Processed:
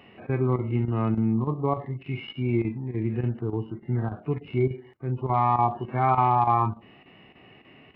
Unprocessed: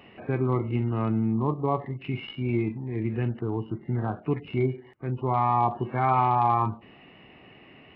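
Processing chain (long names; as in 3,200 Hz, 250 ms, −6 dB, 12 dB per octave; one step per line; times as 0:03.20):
harmonic and percussive parts rebalanced percussive −8 dB
square-wave tremolo 3.4 Hz, depth 65%, duty 90%
level +2 dB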